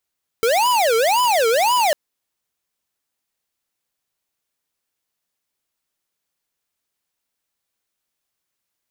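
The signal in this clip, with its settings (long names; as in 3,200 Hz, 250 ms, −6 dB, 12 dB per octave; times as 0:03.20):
siren wail 446–1,000 Hz 1.9 per second square −16.5 dBFS 1.50 s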